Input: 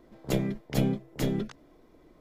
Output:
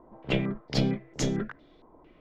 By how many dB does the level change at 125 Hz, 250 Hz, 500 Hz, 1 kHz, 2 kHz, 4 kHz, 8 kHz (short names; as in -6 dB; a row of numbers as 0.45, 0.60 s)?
0.0, 0.0, 0.0, +1.0, +5.0, +6.0, +4.0 dB